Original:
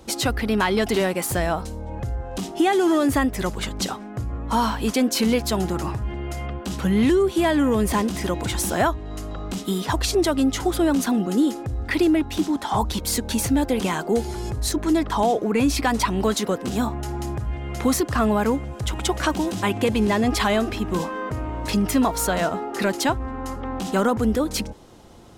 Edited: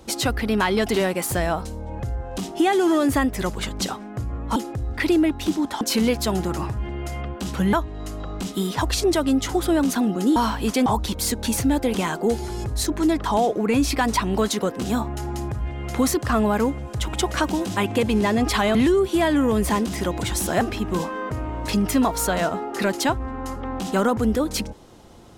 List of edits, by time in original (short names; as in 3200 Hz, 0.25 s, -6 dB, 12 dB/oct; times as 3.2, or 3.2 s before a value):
4.56–5.06 swap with 11.47–12.72
6.98–8.84 move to 20.61